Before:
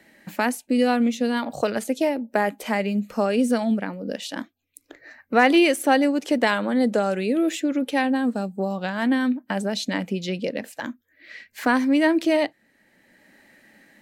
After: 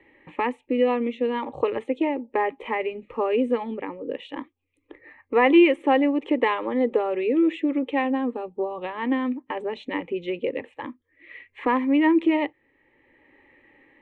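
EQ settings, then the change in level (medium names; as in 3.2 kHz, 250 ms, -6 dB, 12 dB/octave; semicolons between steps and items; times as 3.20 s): steep low-pass 9.1 kHz; distance through air 430 m; static phaser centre 1 kHz, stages 8; +4.5 dB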